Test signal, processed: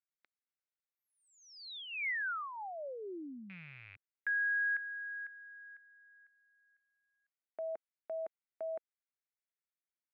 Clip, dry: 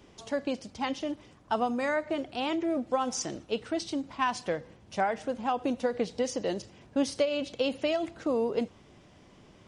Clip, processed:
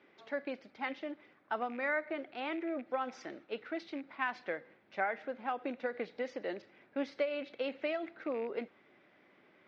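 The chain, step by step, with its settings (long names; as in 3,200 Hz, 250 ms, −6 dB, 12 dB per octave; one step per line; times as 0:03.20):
loose part that buzzes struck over −36 dBFS, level −37 dBFS
loudspeaker in its box 380–3,300 Hz, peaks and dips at 470 Hz −4 dB, 700 Hz −4 dB, 1,000 Hz −7 dB, 1,500 Hz +3 dB, 2,100 Hz +5 dB, 3,000 Hz −8 dB
level −3 dB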